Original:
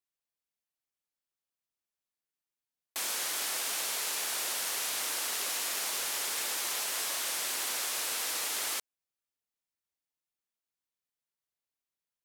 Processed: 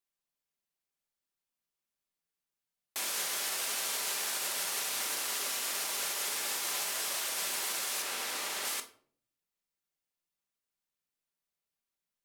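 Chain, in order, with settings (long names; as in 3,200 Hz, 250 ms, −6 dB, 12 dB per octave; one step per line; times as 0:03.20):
0:08.02–0:08.65: high-shelf EQ 4,600 Hz −7 dB
brickwall limiter −25.5 dBFS, peak gain reduction 5 dB
rectangular room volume 540 cubic metres, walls furnished, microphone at 1.2 metres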